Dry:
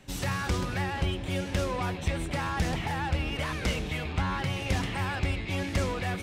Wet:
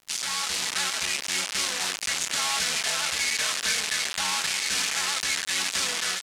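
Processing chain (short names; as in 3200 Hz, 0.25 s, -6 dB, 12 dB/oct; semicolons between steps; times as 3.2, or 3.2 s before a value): formant shift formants -4 st; comb 4.6 ms, depth 58%; bit-crush 5-bit; weighting filter ITU-R 468; crackle 160/s -42 dBFS; limiter -22 dBFS, peak gain reduction 11 dB; AGC gain up to 3.5 dB; gain +1.5 dB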